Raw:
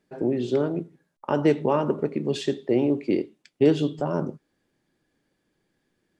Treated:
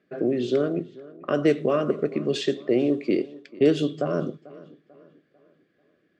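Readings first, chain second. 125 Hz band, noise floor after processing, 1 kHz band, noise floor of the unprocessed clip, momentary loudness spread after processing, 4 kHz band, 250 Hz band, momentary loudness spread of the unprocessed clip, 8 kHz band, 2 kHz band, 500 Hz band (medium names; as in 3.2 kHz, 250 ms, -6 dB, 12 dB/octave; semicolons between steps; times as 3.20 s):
-2.5 dB, -69 dBFS, -4.0 dB, -75 dBFS, 12 LU, +3.0 dB, 0.0 dB, 11 LU, no reading, +2.5 dB, +1.0 dB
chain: high-pass 90 Hz; level-controlled noise filter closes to 2.7 kHz, open at -17 dBFS; bass shelf 230 Hz -6.5 dB; in parallel at +0.5 dB: compression, threshold -32 dBFS, peak gain reduction 15.5 dB; on the sum: Butterworth band-stop 890 Hz, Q 2.7; on a send: tape echo 443 ms, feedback 44%, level -19.5 dB, low-pass 3.4 kHz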